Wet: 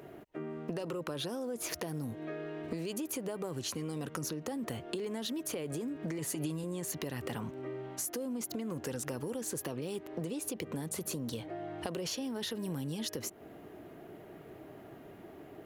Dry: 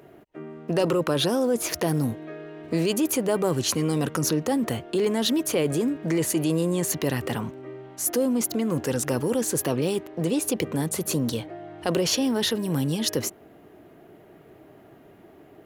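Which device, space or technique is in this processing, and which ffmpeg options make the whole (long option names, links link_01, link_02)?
serial compression, leveller first: -filter_complex "[0:a]acompressor=threshold=-25dB:ratio=6,acompressor=threshold=-36dB:ratio=4,asettb=1/sr,asplit=3[link_01][link_02][link_03];[link_01]atrim=end=6.184[link_04];[link_02]atrim=start=6.18:end=6.64,asetpts=PTS-STARTPTS,afade=type=in:duration=0.004:curve=qsin,afade=type=out:start_time=0.456:duration=0.004:curve=qsin,aecho=1:1:7.2:0.63,atrim=end_sample=20286[link_05];[link_03]atrim=start=6.636[link_06];[link_04][link_05]acrossfade=duration=0.004:curve1=hsin:curve2=qsin[link_07];[link_07][link_06]acrossfade=duration=0.004:curve1=qsin:curve2=hsin"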